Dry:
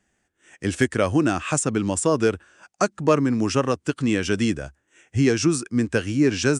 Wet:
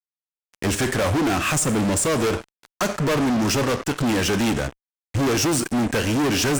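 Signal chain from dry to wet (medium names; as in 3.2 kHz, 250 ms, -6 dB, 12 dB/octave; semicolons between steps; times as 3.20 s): Schroeder reverb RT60 0.73 s, combs from 29 ms, DRR 16 dB; fuzz box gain 33 dB, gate -39 dBFS; trim -5.5 dB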